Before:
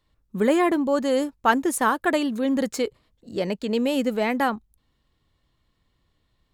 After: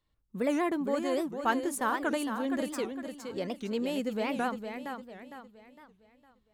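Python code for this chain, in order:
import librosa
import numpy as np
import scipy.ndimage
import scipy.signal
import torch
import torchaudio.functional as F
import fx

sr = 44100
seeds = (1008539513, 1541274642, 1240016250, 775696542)

p1 = x + fx.echo_feedback(x, sr, ms=458, feedback_pct=40, wet_db=-7.5, dry=0)
p2 = fx.record_warp(p1, sr, rpm=78.0, depth_cents=250.0)
y = p2 * librosa.db_to_amplitude(-9.0)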